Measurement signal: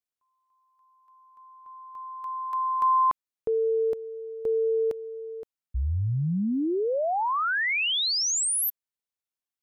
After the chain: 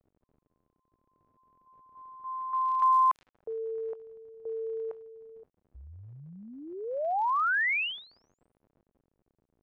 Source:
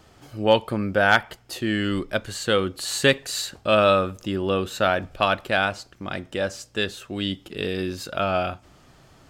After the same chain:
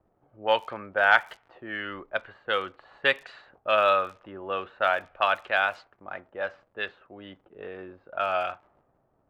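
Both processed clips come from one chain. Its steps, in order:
three-way crossover with the lows and the highs turned down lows −21 dB, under 590 Hz, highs −20 dB, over 3,200 Hz
surface crackle 77 per second −38 dBFS
low-pass that shuts in the quiet parts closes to 370 Hz, open at −21.5 dBFS

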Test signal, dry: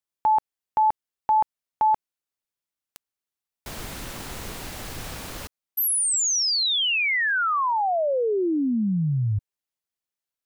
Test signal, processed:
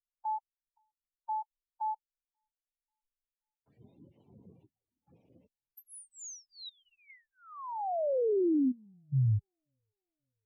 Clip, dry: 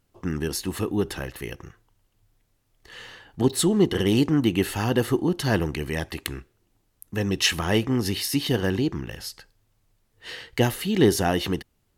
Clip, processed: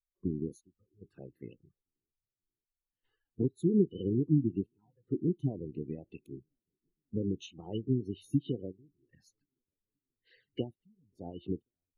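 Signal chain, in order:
spectral magnitudes quantised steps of 30 dB
high-pass filter 83 Hz 24 dB per octave
downward compressor 8 to 1, threshold −29 dBFS
gate pattern "xxx..xxxxx" 74 BPM −12 dB
flanger swept by the level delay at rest 9.1 ms, full sweep at −33.5 dBFS
bucket-brigade delay 535 ms, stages 4,096, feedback 80%, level −23 dB
background noise brown −62 dBFS
every bin expanded away from the loudest bin 2.5 to 1
level −1 dB

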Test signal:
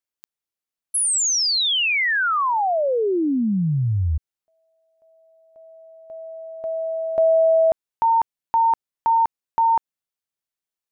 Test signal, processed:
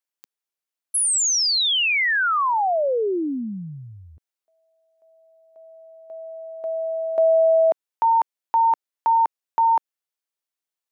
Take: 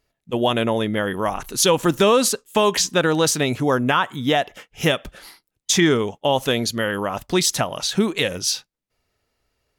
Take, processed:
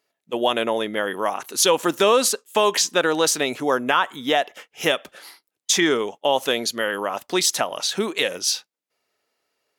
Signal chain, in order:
high-pass filter 340 Hz 12 dB per octave

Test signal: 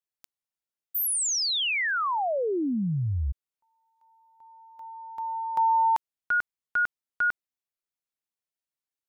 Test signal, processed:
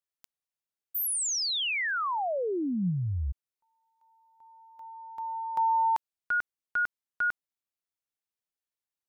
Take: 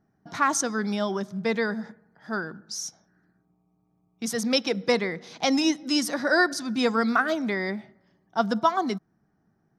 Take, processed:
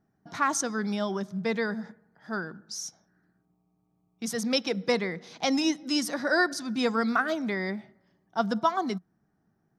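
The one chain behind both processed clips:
dynamic equaliser 180 Hz, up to +4 dB, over −45 dBFS, Q 6.5
level −3 dB

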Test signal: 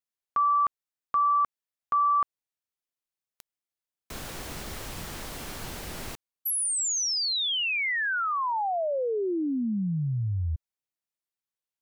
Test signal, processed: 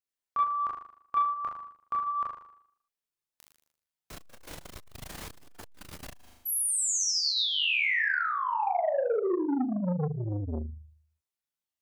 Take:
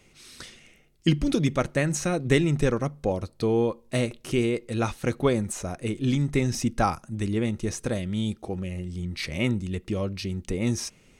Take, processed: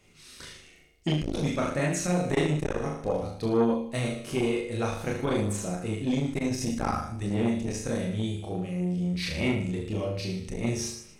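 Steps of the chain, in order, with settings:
flutter between parallel walls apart 6.7 metres, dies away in 0.65 s
multi-voice chorus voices 2, 0.27 Hz, delay 27 ms, depth 1.4 ms
saturating transformer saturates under 480 Hz

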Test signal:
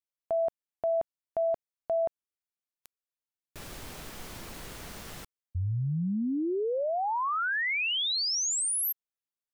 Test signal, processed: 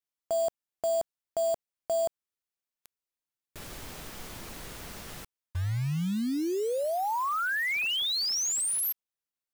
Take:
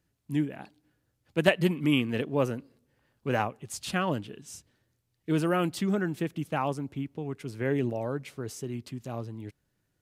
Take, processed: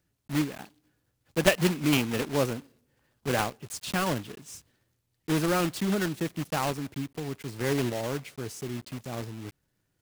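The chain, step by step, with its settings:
one scale factor per block 3 bits

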